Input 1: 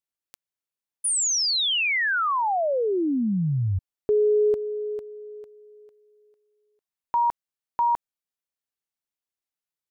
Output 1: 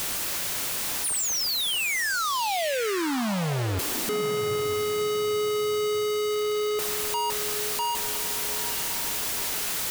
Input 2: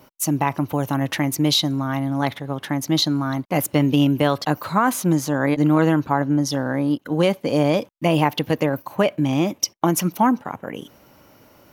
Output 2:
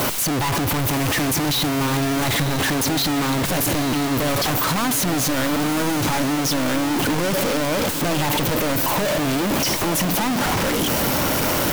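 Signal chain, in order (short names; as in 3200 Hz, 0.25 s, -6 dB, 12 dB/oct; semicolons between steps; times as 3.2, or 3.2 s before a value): infinite clipping; diffused feedback echo 0.909 s, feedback 40%, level -10 dB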